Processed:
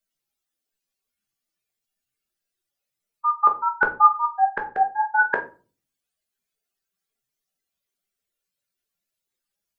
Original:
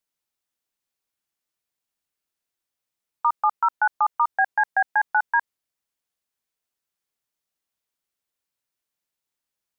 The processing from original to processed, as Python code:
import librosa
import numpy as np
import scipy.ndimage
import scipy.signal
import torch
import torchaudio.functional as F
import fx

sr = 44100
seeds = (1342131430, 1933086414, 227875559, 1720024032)

y = fx.spec_expand(x, sr, power=2.8)
y = fx.peak_eq(y, sr, hz=950.0, db=-8.0, octaves=0.43)
y = fx.filter_lfo_lowpass(y, sr, shape='saw_up', hz=fx.line((3.35, 2.3), (5.38, 8.5)), low_hz=460.0, high_hz=1600.0, q=3.3, at=(3.35, 5.38), fade=0.02)
y = fx.room_shoebox(y, sr, seeds[0], volume_m3=200.0, walls='furnished', distance_m=1.2)